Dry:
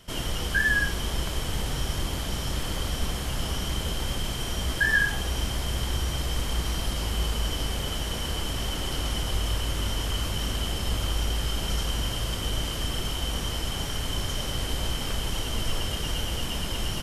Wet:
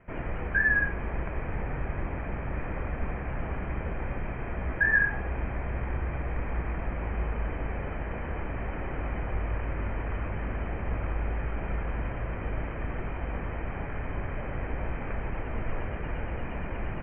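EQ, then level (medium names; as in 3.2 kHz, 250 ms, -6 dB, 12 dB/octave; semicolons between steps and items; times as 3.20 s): rippled Chebyshev low-pass 2.5 kHz, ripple 3 dB; 0.0 dB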